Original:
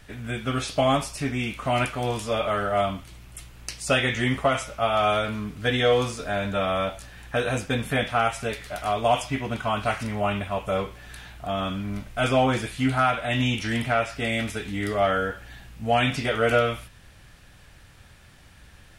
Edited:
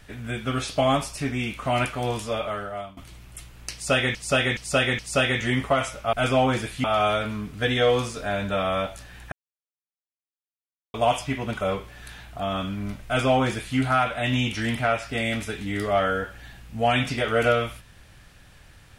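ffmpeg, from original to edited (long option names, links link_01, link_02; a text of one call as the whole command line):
ffmpeg -i in.wav -filter_complex "[0:a]asplit=10[link_01][link_02][link_03][link_04][link_05][link_06][link_07][link_08][link_09][link_10];[link_01]atrim=end=2.97,asetpts=PTS-STARTPTS,afade=type=out:start_time=2.16:duration=0.81:silence=0.0891251[link_11];[link_02]atrim=start=2.97:end=4.152,asetpts=PTS-STARTPTS,afade=type=in:duration=0.004:curve=hsin:silence=0.0891251[link_12];[link_03]atrim=start=3.728:end=4.152[link_13];[link_04]atrim=start=3.728:end=4.152[link_14];[link_05]atrim=start=3.728:end=4.872[link_15];[link_06]atrim=start=12.128:end=12.842[link_16];[link_07]atrim=start=4.868:end=7.35,asetpts=PTS-STARTPTS,afade=type=out:start_time=2.478:duration=0.004:curve=hsin[link_17];[link_08]atrim=start=7.35:end=8.97,asetpts=PTS-STARTPTS,volume=0[link_18];[link_09]atrim=start=8.97:end=9.642,asetpts=PTS-STARTPTS,afade=type=in:duration=0.004:curve=hsin[link_19];[link_10]atrim=start=10.678[link_20];[link_11][link_12]concat=n=2:v=0:a=1[link_21];[link_21][link_13]acrossfade=duration=0.004:curve1=hsin:curve2=hsin[link_22];[link_22][link_14]acrossfade=duration=0.004:curve1=hsin:curve2=hsin[link_23];[link_23][link_15]acrossfade=duration=0.004:curve1=hsin:curve2=hsin[link_24];[link_24][link_16]acrossfade=duration=0.004:curve1=hsin:curve2=hsin[link_25];[link_17][link_18][link_19]concat=n=3:v=0:a=1[link_26];[link_25][link_26]acrossfade=duration=0.004:curve1=hsin:curve2=hsin[link_27];[link_27][link_20]acrossfade=duration=0.004:curve1=hsin:curve2=hsin" out.wav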